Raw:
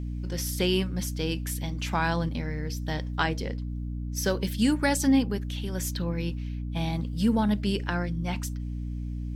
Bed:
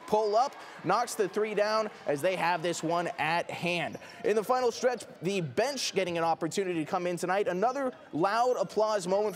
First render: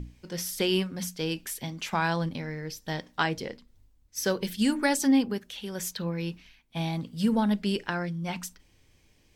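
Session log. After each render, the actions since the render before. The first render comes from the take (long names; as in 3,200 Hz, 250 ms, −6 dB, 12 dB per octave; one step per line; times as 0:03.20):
mains-hum notches 60/120/180/240/300 Hz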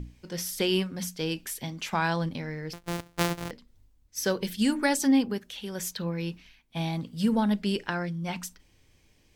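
0:02.73–0:03.51: samples sorted by size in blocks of 256 samples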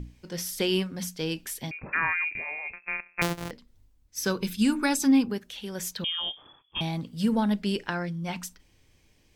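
0:01.71–0:03.22: voice inversion scrambler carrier 2,600 Hz
0:04.24–0:05.30: comb filter 0.8 ms, depth 47%
0:06.04–0:06.81: voice inversion scrambler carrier 3,400 Hz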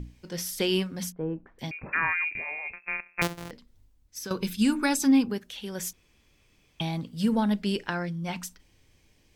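0:01.12–0:01.59: low-pass filter 1,200 Hz 24 dB per octave
0:03.27–0:04.31: downward compressor 4 to 1, threshold −35 dBFS
0:05.93–0:06.80: fill with room tone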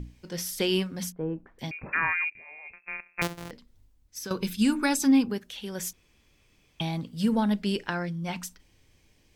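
0:02.30–0:03.49: fade in, from −19 dB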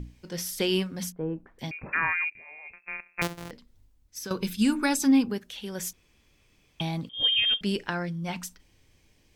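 0:07.09–0:07.61: voice inversion scrambler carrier 3,400 Hz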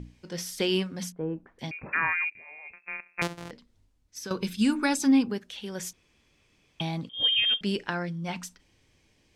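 Bessel low-pass filter 8,500 Hz, order 2
low-shelf EQ 61 Hz −9 dB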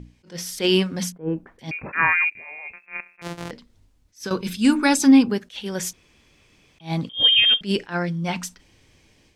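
automatic gain control gain up to 8.5 dB
level that may rise only so fast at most 250 dB per second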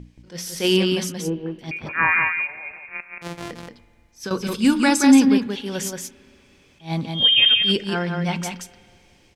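on a send: single-tap delay 177 ms −4.5 dB
on the sum: spring reverb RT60 2.5 s, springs 38/56 ms, chirp 45 ms, DRR 19 dB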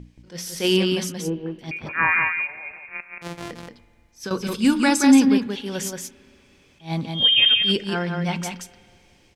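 level −1 dB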